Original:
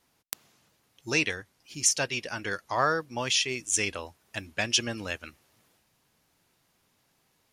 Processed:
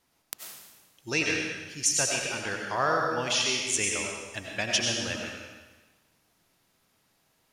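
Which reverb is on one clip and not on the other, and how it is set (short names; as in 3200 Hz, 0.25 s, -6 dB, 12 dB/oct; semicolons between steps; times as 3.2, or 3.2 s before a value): digital reverb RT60 1.2 s, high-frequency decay 1×, pre-delay 55 ms, DRR 0 dB; gain -2 dB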